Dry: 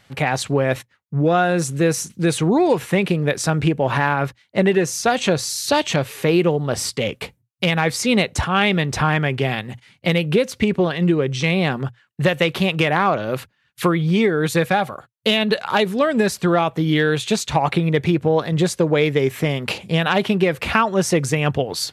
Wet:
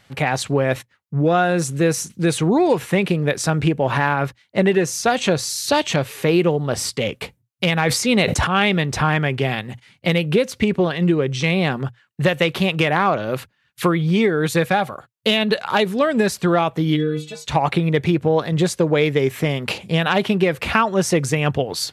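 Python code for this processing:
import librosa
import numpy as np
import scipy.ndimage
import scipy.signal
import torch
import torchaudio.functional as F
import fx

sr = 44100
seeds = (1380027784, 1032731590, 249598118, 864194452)

y = fx.sustainer(x, sr, db_per_s=51.0, at=(7.73, 8.47))
y = fx.stiff_resonator(y, sr, f0_hz=150.0, decay_s=0.3, stiffness=0.008, at=(16.95, 17.44), fade=0.02)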